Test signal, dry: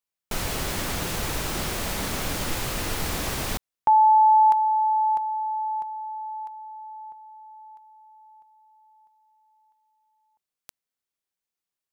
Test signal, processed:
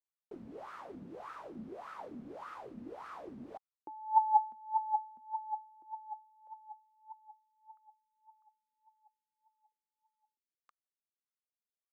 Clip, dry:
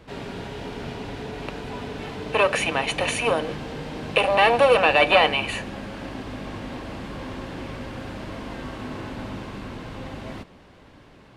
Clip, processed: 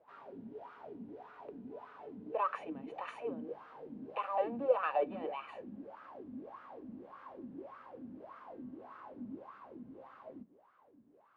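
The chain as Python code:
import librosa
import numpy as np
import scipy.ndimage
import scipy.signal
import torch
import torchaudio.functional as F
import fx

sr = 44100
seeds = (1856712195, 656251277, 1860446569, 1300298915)

y = fx.wah_lfo(x, sr, hz=1.7, low_hz=220.0, high_hz=1300.0, q=8.1)
y = y * 10.0 ** (-3.0 / 20.0)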